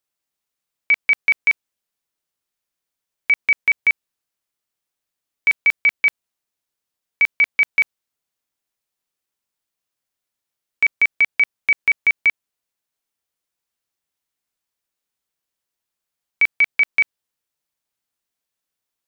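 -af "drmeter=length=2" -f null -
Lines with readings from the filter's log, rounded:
Channel 1: DR: 9.5
Overall DR: 9.5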